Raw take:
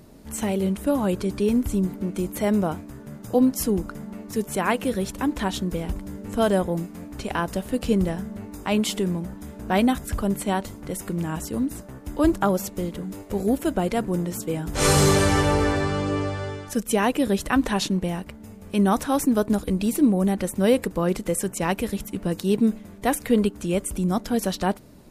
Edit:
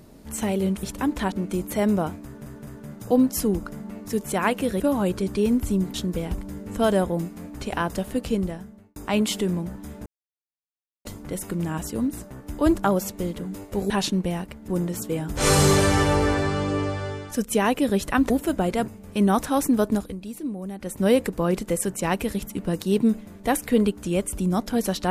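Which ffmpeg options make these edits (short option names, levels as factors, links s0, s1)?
-filter_complex "[0:a]asplit=16[s0][s1][s2][s3][s4][s5][s6][s7][s8][s9][s10][s11][s12][s13][s14][s15];[s0]atrim=end=0.832[s16];[s1]atrim=start=5.028:end=5.522[s17];[s2]atrim=start=1.968:end=3.112[s18];[s3]atrim=start=2.898:end=3.112[s19];[s4]atrim=start=2.898:end=5.032[s20];[s5]atrim=start=0.828:end=1.972[s21];[s6]atrim=start=5.518:end=8.54,asetpts=PTS-STARTPTS,afade=t=out:st=2.142:d=0.88[s22];[s7]atrim=start=8.54:end=9.64,asetpts=PTS-STARTPTS,afade=t=in:d=0.004:c=hsin,afade=t=out:st=1.096:d=0.004:c=hsin[s23];[s8]atrim=start=9.64:end=10.63,asetpts=PTS-STARTPTS,volume=0[s24];[s9]atrim=start=10.63:end=13.482,asetpts=PTS-STARTPTS,afade=t=in:d=0.004:c=hsin[s25];[s10]atrim=start=17.678:end=18.462[s26];[s11]atrim=start=14.058:end=17.682[s27];[s12]atrim=start=13.478:end=14.062[s28];[s13]atrim=start=18.458:end=19.74,asetpts=PTS-STARTPTS,afade=t=out:st=1.032:d=0.25:silence=0.251189[s29];[s14]atrim=start=19.74:end=20.36,asetpts=PTS-STARTPTS,volume=0.251[s30];[s15]atrim=start=20.36,asetpts=PTS-STARTPTS,afade=t=in:d=0.25:silence=0.251189[s31];[s16][s17]acrossfade=d=0.004:c1=hsin:c2=hsin[s32];[s32][s18]acrossfade=d=0.004:c1=hsin:c2=hsin[s33];[s33][s19]acrossfade=d=0.004:c1=hsin:c2=hsin[s34];[s34][s20]acrossfade=d=0.004:c1=hsin:c2=hsin[s35];[s35][s21]acrossfade=d=0.004:c1=hsin:c2=hsin[s36];[s22][s23][s24][s25]concat=n=4:v=0:a=1[s37];[s36][s37]acrossfade=d=0.004:c1=hsin:c2=hsin[s38];[s38][s26]acrossfade=d=0.004:c1=hsin:c2=hsin[s39];[s39][s27]acrossfade=d=0.004:c1=hsin:c2=hsin[s40];[s40][s28]acrossfade=d=0.004:c1=hsin:c2=hsin[s41];[s29][s30][s31]concat=n=3:v=0:a=1[s42];[s41][s42]acrossfade=d=0.004:c1=hsin:c2=hsin"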